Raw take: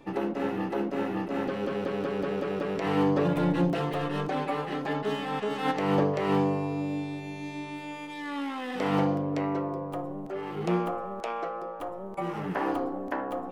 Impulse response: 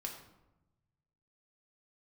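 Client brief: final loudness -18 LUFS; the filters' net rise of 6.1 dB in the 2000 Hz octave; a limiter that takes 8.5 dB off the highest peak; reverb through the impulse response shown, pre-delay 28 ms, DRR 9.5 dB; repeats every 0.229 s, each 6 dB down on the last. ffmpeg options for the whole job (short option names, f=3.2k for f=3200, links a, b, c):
-filter_complex "[0:a]equalizer=f=2k:t=o:g=7.5,alimiter=limit=-23dB:level=0:latency=1,aecho=1:1:229|458|687|916|1145|1374:0.501|0.251|0.125|0.0626|0.0313|0.0157,asplit=2[a][b];[1:a]atrim=start_sample=2205,adelay=28[c];[b][c]afir=irnorm=-1:irlink=0,volume=-8dB[d];[a][d]amix=inputs=2:normalize=0,volume=13dB"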